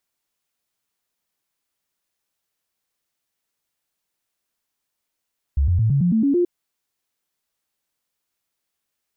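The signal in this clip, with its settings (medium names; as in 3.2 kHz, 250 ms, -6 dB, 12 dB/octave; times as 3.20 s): stepped sine 69.9 Hz up, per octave 3, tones 8, 0.11 s, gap 0.00 s -14.5 dBFS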